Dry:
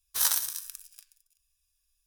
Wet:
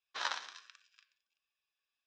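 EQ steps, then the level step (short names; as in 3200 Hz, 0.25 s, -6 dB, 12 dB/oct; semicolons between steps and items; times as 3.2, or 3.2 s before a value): HPF 440 Hz 12 dB/oct; elliptic low-pass 7400 Hz, stop band 40 dB; air absorption 350 m; +4.5 dB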